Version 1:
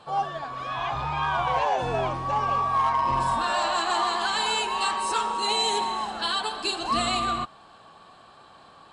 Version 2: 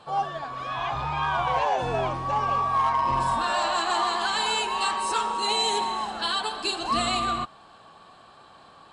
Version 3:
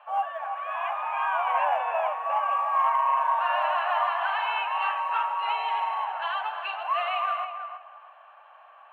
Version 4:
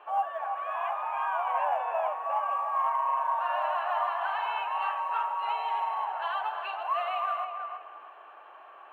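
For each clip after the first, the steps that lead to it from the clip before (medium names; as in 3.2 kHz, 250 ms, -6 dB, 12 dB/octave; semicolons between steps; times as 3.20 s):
no audible change
Chebyshev band-pass 600–2800 Hz, order 4; short-mantissa float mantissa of 6-bit; filtered feedback delay 323 ms, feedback 24%, low-pass 1.9 kHz, level -7 dB
dynamic bell 2.5 kHz, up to -7 dB, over -42 dBFS, Q 0.78; in parallel at -2.5 dB: gain riding 0.5 s; on the sum: band noise 350–1400 Hz -55 dBFS; trim -6 dB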